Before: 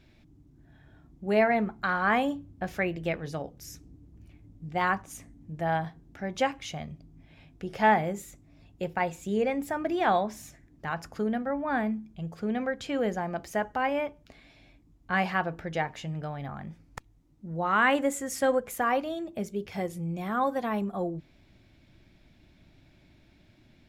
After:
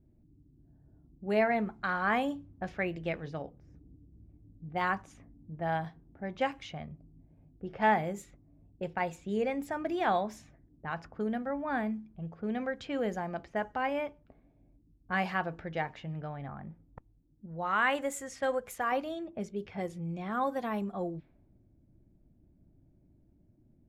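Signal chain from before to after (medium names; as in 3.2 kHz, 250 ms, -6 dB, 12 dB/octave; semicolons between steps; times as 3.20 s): level-controlled noise filter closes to 370 Hz, open at -26.5 dBFS; 17.46–18.92 s: peaking EQ 260 Hz -6 dB 1.5 oct; trim -4 dB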